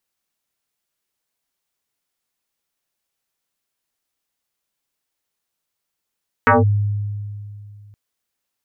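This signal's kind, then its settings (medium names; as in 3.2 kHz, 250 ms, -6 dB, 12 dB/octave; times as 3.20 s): FM tone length 1.47 s, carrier 103 Hz, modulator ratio 3.38, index 5.4, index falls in 0.17 s linear, decay 2.58 s, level -8 dB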